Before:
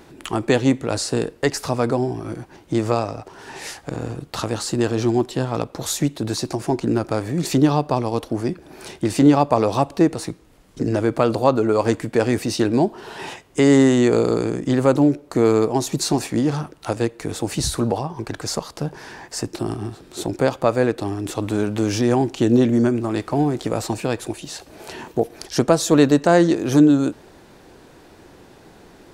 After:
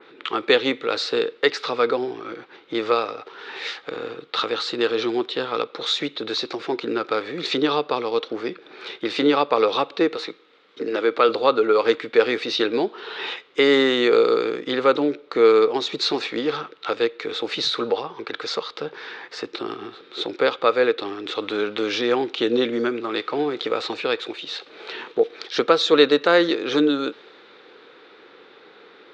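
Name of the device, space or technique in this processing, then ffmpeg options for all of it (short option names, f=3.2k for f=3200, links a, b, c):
phone earpiece: -filter_complex "[0:a]highpass=440,equalizer=f=460:t=q:w=4:g=8,equalizer=f=660:t=q:w=4:g=-9,equalizer=f=940:t=q:w=4:g=-4,equalizer=f=1.3k:t=q:w=4:g=8,equalizer=f=2.2k:t=q:w=4:g=5,equalizer=f=3.7k:t=q:w=4:g=9,lowpass=f=3.9k:w=0.5412,lowpass=f=3.9k:w=1.3066,asettb=1/sr,asplit=3[a][b][c];[a]atrim=end=10.174[d];[b]atrim=start=10.17:end=11.29,asetpts=PTS-STARTPTS,afade=t=in:d=0.004:c=qsin,afade=t=out:st=1.116:d=0.004:c=qsin,highpass=190[e];[c]atrim=start=11.286[f];[d][e]acrossfade=d=0.004:c1=hsin:c2=qsin[g];[g][f]acrossfade=d=0.004:c1=qsin:c2=hsin,adynamicequalizer=threshold=0.0112:dfrequency=2800:dqfactor=0.7:tfrequency=2800:tqfactor=0.7:attack=5:release=100:ratio=0.375:range=3:mode=boostabove:tftype=highshelf"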